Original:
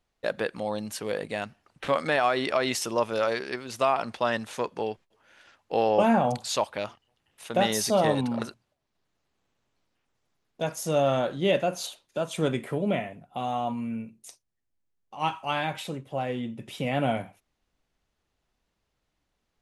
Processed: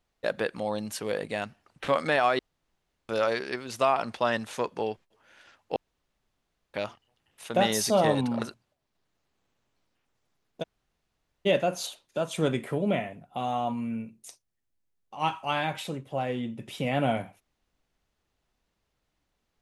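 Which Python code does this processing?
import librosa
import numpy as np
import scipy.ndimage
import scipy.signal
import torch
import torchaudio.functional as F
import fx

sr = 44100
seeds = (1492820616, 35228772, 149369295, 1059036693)

y = fx.edit(x, sr, fx.room_tone_fill(start_s=2.39, length_s=0.7),
    fx.room_tone_fill(start_s=5.76, length_s=0.98),
    fx.room_tone_fill(start_s=10.63, length_s=0.83, crossfade_s=0.02), tone=tone)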